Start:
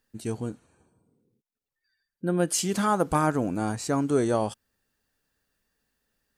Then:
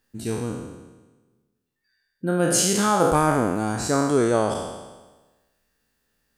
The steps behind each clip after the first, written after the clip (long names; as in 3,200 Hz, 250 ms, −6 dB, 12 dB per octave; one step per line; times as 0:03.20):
peak hold with a decay on every bin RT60 1.23 s
level +2 dB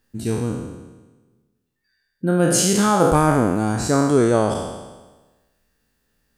low-shelf EQ 300 Hz +5.5 dB
level +1.5 dB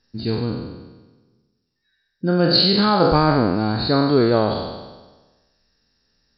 hearing-aid frequency compression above 3,600 Hz 4 to 1